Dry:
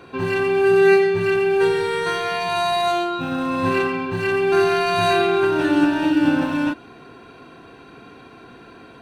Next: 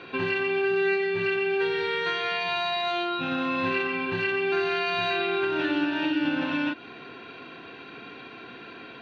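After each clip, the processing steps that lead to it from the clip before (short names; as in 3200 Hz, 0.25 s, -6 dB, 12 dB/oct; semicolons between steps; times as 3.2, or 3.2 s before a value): weighting filter D; compressor 3:1, threshold -24 dBFS, peak gain reduction 12 dB; air absorption 250 m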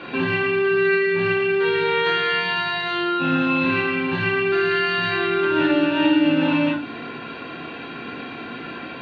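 LPF 4400 Hz 12 dB/oct; in parallel at -1 dB: compressor, threshold -33 dBFS, peak gain reduction 11.5 dB; on the sum: reverb RT60 0.45 s, pre-delay 3 ms, DRR -2 dB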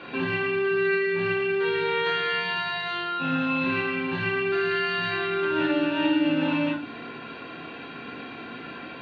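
notches 50/100/150/200/250/300/350 Hz; gain -5 dB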